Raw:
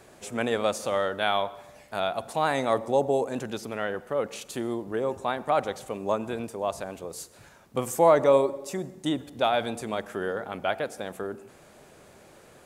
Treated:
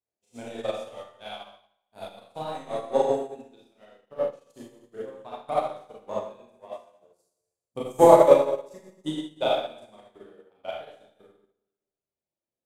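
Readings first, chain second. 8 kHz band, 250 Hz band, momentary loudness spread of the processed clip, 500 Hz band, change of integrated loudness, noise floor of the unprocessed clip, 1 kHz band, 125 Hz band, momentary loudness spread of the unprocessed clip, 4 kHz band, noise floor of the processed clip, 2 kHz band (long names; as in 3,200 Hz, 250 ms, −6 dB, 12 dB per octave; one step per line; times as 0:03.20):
−6.5 dB, −1.5 dB, 25 LU, +1.5 dB, +4.0 dB, −54 dBFS, −0.5 dB, −3.5 dB, 13 LU, −4.5 dB, below −85 dBFS, −10.0 dB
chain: reverb reduction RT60 1.9 s
parametric band 1,500 Hz −8.5 dB 0.87 octaves
transient designer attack +9 dB, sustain −5 dB
in parallel at −6.5 dB: dead-zone distortion −30.5 dBFS
on the sum: four-comb reverb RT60 1.5 s, combs from 26 ms, DRR −7 dB
expander for the loud parts 2.5 to 1, over −33 dBFS
level −4 dB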